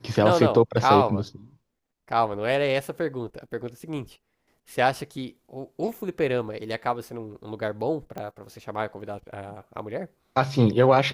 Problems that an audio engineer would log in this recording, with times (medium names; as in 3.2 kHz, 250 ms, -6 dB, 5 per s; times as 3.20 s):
8.18 s: pop -21 dBFS